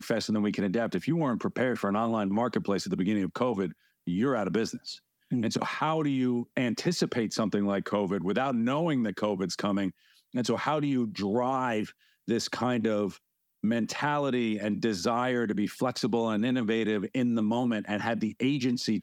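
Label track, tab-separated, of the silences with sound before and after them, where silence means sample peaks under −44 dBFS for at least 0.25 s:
3.720000	4.070000	silence
4.970000	5.310000	silence
9.910000	10.340000	silence
11.910000	12.280000	silence
13.170000	13.630000	silence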